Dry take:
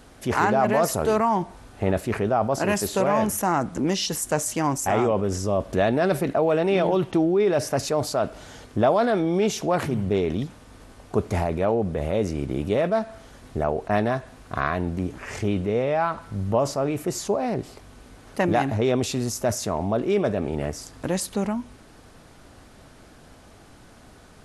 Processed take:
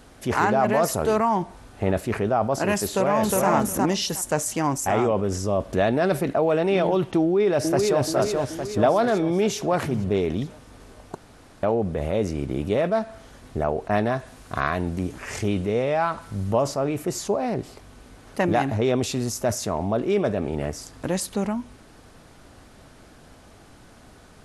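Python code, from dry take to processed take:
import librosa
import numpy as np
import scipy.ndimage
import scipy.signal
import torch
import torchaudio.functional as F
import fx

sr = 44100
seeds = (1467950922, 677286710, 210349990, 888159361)

y = fx.echo_throw(x, sr, start_s=2.87, length_s=0.62, ms=360, feedback_pct=15, wet_db=-1.5)
y = fx.echo_throw(y, sr, start_s=7.21, length_s=0.81, ms=430, feedback_pct=55, wet_db=-3.0)
y = fx.high_shelf(y, sr, hz=4200.0, db=7.0, at=(14.19, 16.62))
y = fx.edit(y, sr, fx.room_tone_fill(start_s=11.15, length_s=0.48), tone=tone)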